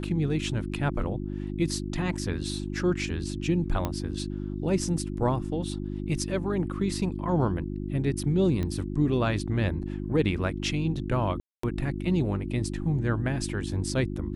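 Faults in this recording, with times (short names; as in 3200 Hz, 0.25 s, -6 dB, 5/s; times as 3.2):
hum 50 Hz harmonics 7 -33 dBFS
3.85 pop -15 dBFS
8.63 pop -19 dBFS
11.4–11.63 gap 0.234 s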